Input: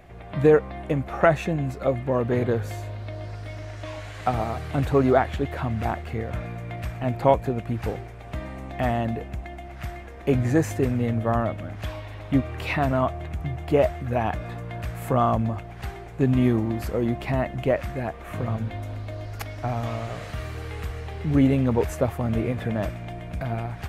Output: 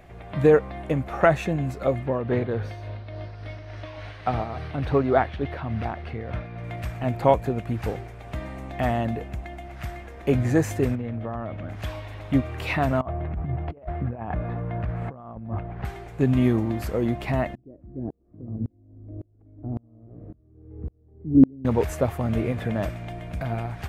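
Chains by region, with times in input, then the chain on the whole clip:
0:02.06–0:06.64: amplitude tremolo 3.5 Hz, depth 44% + Savitzky-Golay smoothing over 15 samples
0:10.95–0:11.69: downward compressor, threshold −26 dBFS + high-frequency loss of the air 170 metres + highs frequency-modulated by the lows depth 0.11 ms
0:13.01–0:15.85: Bessel low-pass filter 1,200 Hz + parametric band 190 Hz +3 dB 0.44 octaves + compressor whose output falls as the input rises −29 dBFS, ratio −0.5
0:17.55–0:21.65: low-pass with resonance 310 Hz, resonance Q 2.8 + tremolo with a ramp in dB swelling 1.8 Hz, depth 33 dB
whole clip: no processing

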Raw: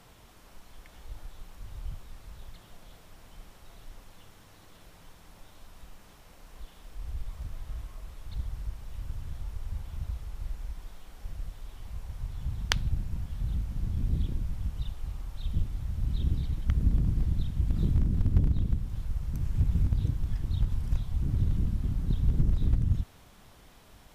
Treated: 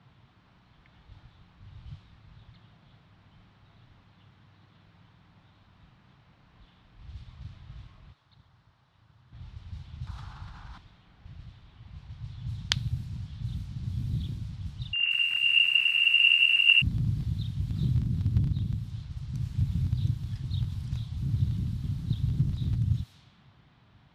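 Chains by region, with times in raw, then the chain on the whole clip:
0:08.12–0:09.33: high-pass filter 940 Hz 6 dB per octave + parametric band 2,400 Hz −6 dB 1.1 octaves
0:10.07–0:10.78: flat-topped bell 1,100 Hz +12 dB 1.3 octaves + envelope flattener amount 50%
0:14.93–0:16.82: converter with a step at zero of −30.5 dBFS + voice inversion scrambler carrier 2,800 Hz + feedback echo at a low word length 180 ms, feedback 55%, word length 8 bits, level −6 dB
whole clip: high-pass filter 76 Hz 12 dB per octave; low-pass that shuts in the quiet parts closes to 1,700 Hz, open at −30 dBFS; octave-band graphic EQ 125/500/4,000 Hz +10/−8/+10 dB; level −4 dB

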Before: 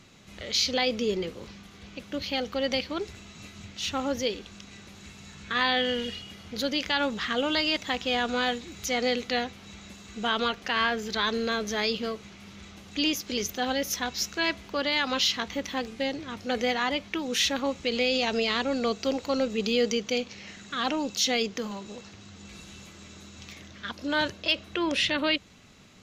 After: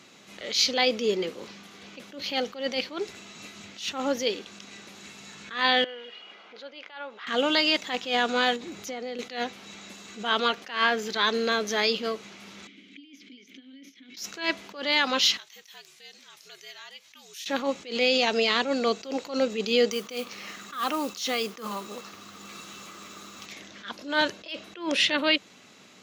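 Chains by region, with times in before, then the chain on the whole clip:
0:05.84–0:07.27: downward compressor 2.5 to 1, threshold −39 dBFS + band-pass filter 530–2,400 Hz + notch filter 1,800 Hz, Q 14
0:08.56–0:09.19: tilt shelving filter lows +4.5 dB, about 1,400 Hz + downward compressor 8 to 1, threshold −34 dBFS
0:12.67–0:14.17: compressor whose output falls as the input rises −39 dBFS + formant filter i
0:15.37–0:17.46: first-order pre-emphasis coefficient 0.97 + downward compressor 2 to 1, threshold −50 dBFS + frequency shifter −72 Hz
0:19.91–0:23.46: parametric band 1,200 Hz +13 dB 0.26 octaves + downward compressor 2 to 1, threshold −29 dBFS + noise that follows the level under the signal 18 dB
whole clip: high-pass filter 250 Hz 12 dB per octave; level that may rise only so fast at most 140 dB per second; level +3.5 dB

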